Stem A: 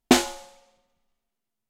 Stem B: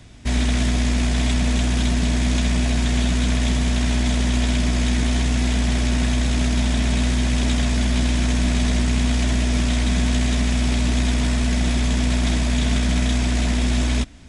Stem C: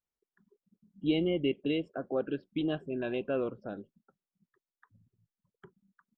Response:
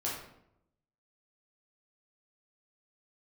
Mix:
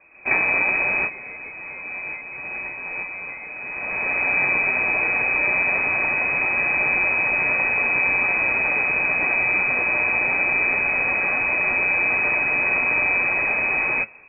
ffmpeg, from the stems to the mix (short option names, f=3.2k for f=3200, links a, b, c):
-filter_complex "[0:a]adelay=200,volume=-12.5dB[a];[1:a]flanger=delay=7.5:depth=5.5:regen=58:speed=0.2:shape=sinusoidal,volume=0dB[b];[2:a]equalizer=f=125:t=o:w=1:g=-11,equalizer=f=250:t=o:w=1:g=-10,equalizer=f=500:t=o:w=1:g=8,equalizer=f=1k:t=o:w=1:g=-8,equalizer=f=2k:t=o:w=1:g=8,volume=-18dB,asplit=2[c][d];[d]apad=whole_len=629853[e];[b][e]sidechaincompress=threshold=-57dB:ratio=10:attack=5:release=707[f];[a][f][c]amix=inputs=3:normalize=0,tiltshelf=f=1.2k:g=-5.5,dynaudnorm=f=100:g=3:m=8dB,lowpass=f=2.2k:t=q:w=0.5098,lowpass=f=2.2k:t=q:w=0.6013,lowpass=f=2.2k:t=q:w=0.9,lowpass=f=2.2k:t=q:w=2.563,afreqshift=-2600"